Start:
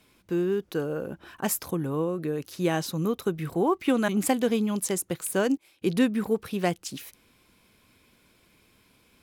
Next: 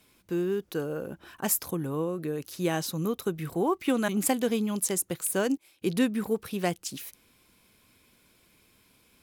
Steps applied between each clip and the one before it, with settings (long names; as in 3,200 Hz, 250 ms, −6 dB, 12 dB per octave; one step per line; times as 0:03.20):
high-shelf EQ 5,900 Hz +6.5 dB
level −2.5 dB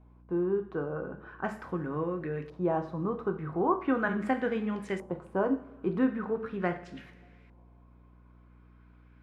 coupled-rooms reverb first 0.47 s, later 2.6 s, from −21 dB, DRR 5 dB
auto-filter low-pass saw up 0.4 Hz 880–2,000 Hz
mains hum 60 Hz, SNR 24 dB
level −4 dB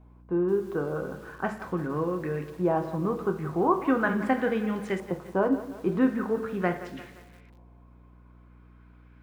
feedback echo at a low word length 173 ms, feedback 55%, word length 8 bits, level −14 dB
level +3.5 dB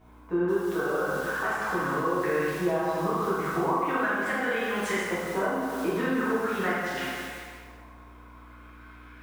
tilt shelving filter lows −8.5 dB, about 640 Hz
downward compressor 6 to 1, threshold −33 dBFS, peak gain reduction 16 dB
dense smooth reverb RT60 1.6 s, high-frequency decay 0.75×, DRR −8.5 dB